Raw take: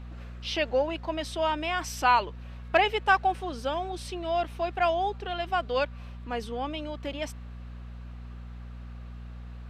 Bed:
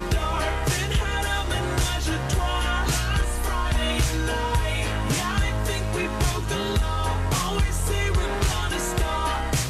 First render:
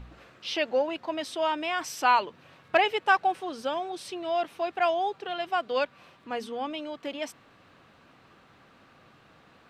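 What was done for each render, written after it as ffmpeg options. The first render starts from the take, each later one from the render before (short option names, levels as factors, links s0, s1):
-af "bandreject=f=60:t=h:w=4,bandreject=f=120:t=h:w=4,bandreject=f=180:t=h:w=4,bandreject=f=240:t=h:w=4"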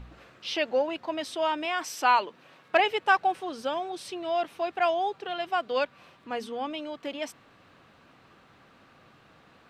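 -filter_complex "[0:a]asettb=1/sr,asplit=3[s0][s1][s2];[s0]atrim=end=1.654[s3];[s1]atrim=start=1.65:end=2.8,asetpts=PTS-STARTPTS,afade=t=in:d=0.004:c=qsin,afade=t=out:st=1.146:d=0.004:c=qsin,highpass=200[s4];[s2]atrim=start=2.796[s5];[s3][s4]acrossfade=d=0.004:c1=hsin:c2=qsin[s6];[s6][s5]acrossfade=d=0.004:c1=qsin:c2=hsin"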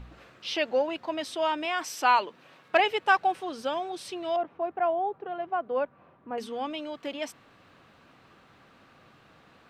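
-filter_complex "[0:a]asettb=1/sr,asplit=3[s0][s1][s2];[s0]atrim=end=4.364[s3];[s1]atrim=start=4.36:end=6.38,asetpts=PTS-STARTPTS,afade=t=in:d=0.004:c=qsin,afade=t=out:st=2.016:d=0.004:c=qsin,lowpass=1100[s4];[s2]atrim=start=6.376[s5];[s3][s4]acrossfade=d=0.004:c1=hsin:c2=qsin[s6];[s6][s5]acrossfade=d=0.004:c1=qsin:c2=hsin"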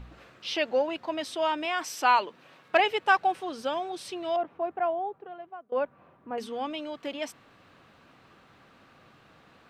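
-filter_complex "[0:a]asplit=2[s0][s1];[s0]atrim=end=5.72,asetpts=PTS-STARTPTS,afade=t=out:st=4.68:d=1.04:silence=0.0668344[s2];[s1]atrim=start=5.72,asetpts=PTS-STARTPTS,afade=t=in:d=0.004:c=hsin:silence=0.0668344[s3];[s2][s3]concat=n=2:v=0:a=1"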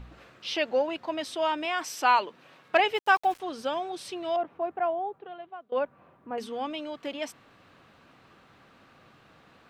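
-filter_complex "[0:a]asettb=1/sr,asplit=3[s0][s1][s2];[s0]atrim=end=2.954[s3];[s1]atrim=start=2.95:end=3.4,asetpts=PTS-STARTPTS,afade=t=in:d=0.004:c=qsin,afade=t=out:st=0.446:d=0.004:c=qsin,aeval=exprs='val(0)*gte(abs(val(0)),0.00794)':c=same[s4];[s2]atrim=start=3.396[s5];[s3][s4]acrossfade=d=0.004:c1=hsin:c2=qsin[s6];[s6][s5]acrossfade=d=0.004:c1=qsin:c2=hsin,asettb=1/sr,asplit=3[s7][s8][s9];[s7]atrim=end=5.194[s10];[s8]atrim=start=5.19:end=5.79,asetpts=PTS-STARTPTS,afade=t=in:d=0.004:c=qsin,afade=t=out:st=0.596:d=0.004:c=qsin,lowpass=f=3700:t=q:w=2.7[s11];[s9]atrim=start=5.786[s12];[s10][s11]acrossfade=d=0.004:c1=hsin:c2=qsin[s13];[s13][s12]acrossfade=d=0.004:c1=qsin:c2=hsin"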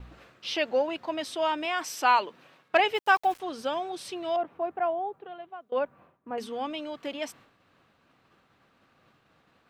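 -af "agate=range=0.0224:threshold=0.00316:ratio=3:detection=peak,highshelf=f=12000:g=3.5"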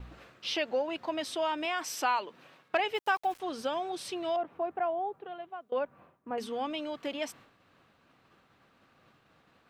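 -af "acompressor=threshold=0.0316:ratio=2"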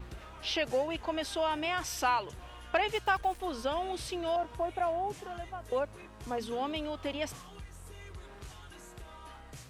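-filter_complex "[1:a]volume=0.0596[s0];[0:a][s0]amix=inputs=2:normalize=0"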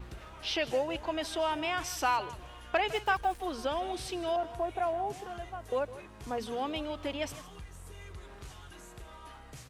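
-af "aecho=1:1:158:0.158"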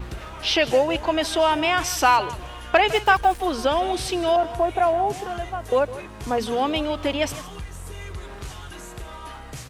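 -af "volume=3.76"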